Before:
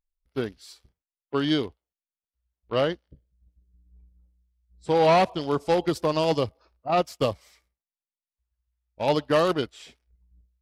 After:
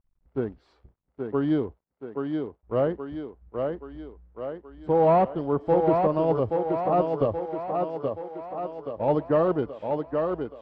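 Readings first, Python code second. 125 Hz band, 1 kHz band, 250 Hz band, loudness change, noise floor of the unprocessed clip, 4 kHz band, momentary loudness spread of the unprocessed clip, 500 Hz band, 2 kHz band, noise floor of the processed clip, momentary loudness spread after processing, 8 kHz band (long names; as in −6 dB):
+1.5 dB, +0.5 dB, +2.0 dB, −1.0 dB, below −85 dBFS, below −15 dB, 14 LU, +2.0 dB, −8.5 dB, −71 dBFS, 15 LU, below −25 dB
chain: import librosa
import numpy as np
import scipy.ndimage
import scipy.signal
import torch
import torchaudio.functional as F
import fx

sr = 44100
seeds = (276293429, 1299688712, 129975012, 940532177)

y = fx.law_mismatch(x, sr, coded='mu')
y = scipy.signal.sosfilt(scipy.signal.butter(2, 1000.0, 'lowpass', fs=sr, output='sos'), y)
y = fx.echo_thinned(y, sr, ms=826, feedback_pct=57, hz=160.0, wet_db=-4)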